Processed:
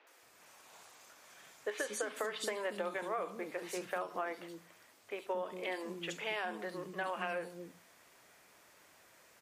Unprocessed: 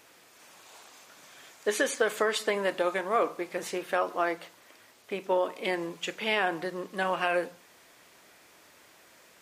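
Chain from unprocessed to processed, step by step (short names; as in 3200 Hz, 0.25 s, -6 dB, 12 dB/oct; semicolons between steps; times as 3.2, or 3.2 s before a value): three bands offset in time mids, highs, lows 70/230 ms, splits 310/3600 Hz; compressor 10:1, threshold -28 dBFS, peak gain reduction 8 dB; gain -5 dB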